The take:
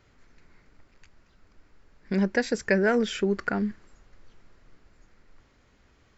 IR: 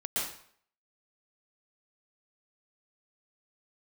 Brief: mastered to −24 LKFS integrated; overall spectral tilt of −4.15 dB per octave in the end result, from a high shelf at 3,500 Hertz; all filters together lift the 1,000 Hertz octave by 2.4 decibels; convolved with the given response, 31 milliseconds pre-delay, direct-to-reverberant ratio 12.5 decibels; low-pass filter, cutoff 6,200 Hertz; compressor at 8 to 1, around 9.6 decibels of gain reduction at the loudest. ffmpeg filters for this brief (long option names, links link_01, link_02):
-filter_complex "[0:a]lowpass=6200,equalizer=frequency=1000:width_type=o:gain=3.5,highshelf=frequency=3500:gain=3,acompressor=threshold=-27dB:ratio=8,asplit=2[link_01][link_02];[1:a]atrim=start_sample=2205,adelay=31[link_03];[link_02][link_03]afir=irnorm=-1:irlink=0,volume=-18.5dB[link_04];[link_01][link_04]amix=inputs=2:normalize=0,volume=8.5dB"